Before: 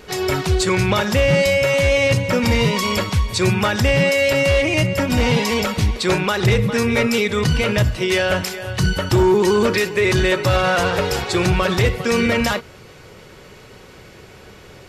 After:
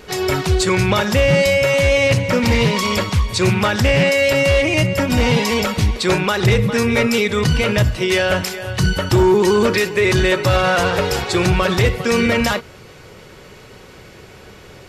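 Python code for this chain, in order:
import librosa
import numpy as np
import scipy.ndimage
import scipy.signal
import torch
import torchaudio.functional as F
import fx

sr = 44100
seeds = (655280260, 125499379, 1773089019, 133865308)

y = fx.doppler_dist(x, sr, depth_ms=0.15, at=(2.1, 4.23))
y = y * librosa.db_to_amplitude(1.5)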